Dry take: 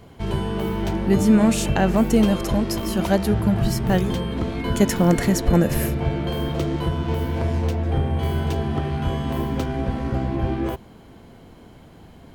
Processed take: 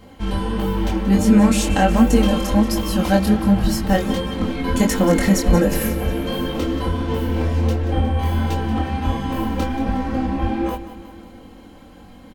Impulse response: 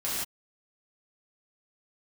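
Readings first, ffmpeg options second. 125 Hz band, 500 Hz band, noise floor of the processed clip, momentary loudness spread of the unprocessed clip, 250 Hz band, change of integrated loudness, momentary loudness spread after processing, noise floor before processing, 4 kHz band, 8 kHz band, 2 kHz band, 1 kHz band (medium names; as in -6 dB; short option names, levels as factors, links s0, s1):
+0.5 dB, +1.5 dB, -43 dBFS, 8 LU, +3.0 dB, +2.5 dB, 8 LU, -46 dBFS, +3.5 dB, +3.0 dB, +3.5 dB, +4.5 dB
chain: -af "flanger=delay=20:depth=5.3:speed=1.4,aecho=1:1:3.8:0.78,aecho=1:1:181|362|543|724|905|1086:0.2|0.116|0.0671|0.0389|0.0226|0.0131,volume=1.58"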